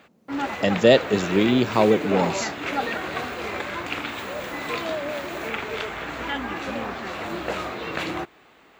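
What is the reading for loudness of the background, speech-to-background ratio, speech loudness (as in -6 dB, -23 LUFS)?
-29.0 LUFS, 8.5 dB, -20.5 LUFS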